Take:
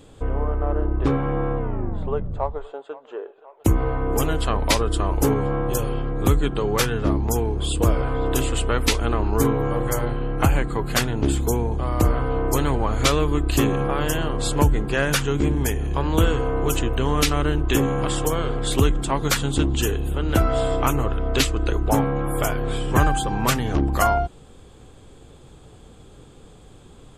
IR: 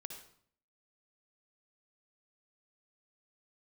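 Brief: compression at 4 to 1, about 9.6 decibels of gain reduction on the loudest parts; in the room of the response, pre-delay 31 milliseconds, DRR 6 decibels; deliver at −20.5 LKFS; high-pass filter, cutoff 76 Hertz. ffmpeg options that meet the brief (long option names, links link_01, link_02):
-filter_complex "[0:a]highpass=76,acompressor=threshold=-26dB:ratio=4,asplit=2[link_01][link_02];[1:a]atrim=start_sample=2205,adelay=31[link_03];[link_02][link_03]afir=irnorm=-1:irlink=0,volume=-2.5dB[link_04];[link_01][link_04]amix=inputs=2:normalize=0,volume=8.5dB"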